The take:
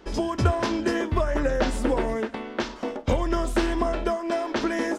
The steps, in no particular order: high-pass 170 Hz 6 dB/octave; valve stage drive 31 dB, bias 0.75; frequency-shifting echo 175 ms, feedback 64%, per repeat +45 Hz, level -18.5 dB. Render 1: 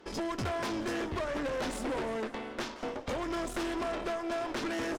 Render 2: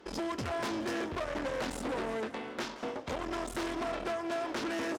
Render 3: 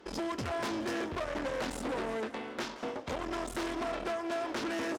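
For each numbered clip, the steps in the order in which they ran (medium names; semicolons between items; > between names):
high-pass > valve stage > frequency-shifting echo; valve stage > frequency-shifting echo > high-pass; valve stage > high-pass > frequency-shifting echo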